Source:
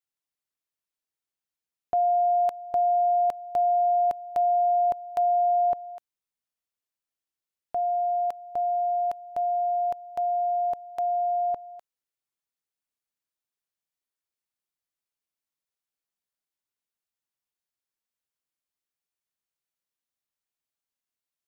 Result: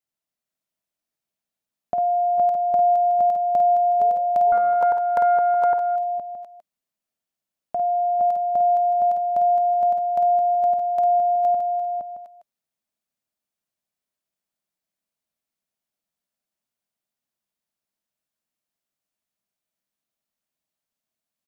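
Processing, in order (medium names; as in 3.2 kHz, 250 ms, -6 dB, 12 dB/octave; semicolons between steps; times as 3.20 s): compression 4:1, threshold -29 dBFS, peak gain reduction 7 dB; small resonant body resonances 200/630 Hz, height 9 dB, ringing for 25 ms; 4.00–4.53 s: painted sound rise 410–940 Hz -43 dBFS; on a send: multi-tap echo 51/451/465/620 ms -7/-14/-3.5/-11 dB; 4.52–5.96 s: on the sum: loudspeaker Doppler distortion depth 0.22 ms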